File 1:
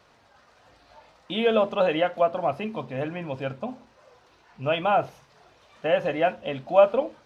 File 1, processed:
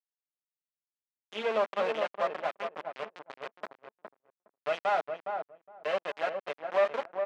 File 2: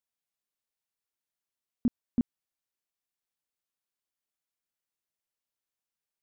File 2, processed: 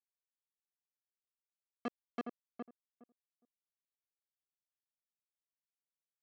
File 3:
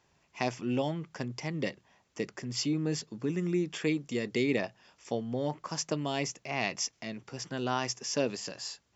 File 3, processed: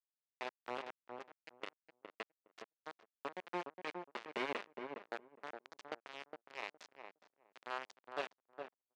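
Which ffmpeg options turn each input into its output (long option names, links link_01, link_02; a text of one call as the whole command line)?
ffmpeg -i in.wav -filter_complex "[0:a]aecho=1:1:4.9:0.5,aeval=exprs='val(0)*gte(abs(val(0)),0.0708)':channel_layout=same,aeval=exprs='(tanh(6.31*val(0)+0.6)-tanh(0.6))/6.31':channel_layout=same,highpass=410,lowpass=2600,asplit=2[link_01][link_02];[link_02]adelay=413,lowpass=frequency=1000:poles=1,volume=-4.5dB,asplit=2[link_03][link_04];[link_04]adelay=413,lowpass=frequency=1000:poles=1,volume=0.16,asplit=2[link_05][link_06];[link_06]adelay=413,lowpass=frequency=1000:poles=1,volume=0.16[link_07];[link_03][link_05][link_07]amix=inputs=3:normalize=0[link_08];[link_01][link_08]amix=inputs=2:normalize=0,volume=-3.5dB" out.wav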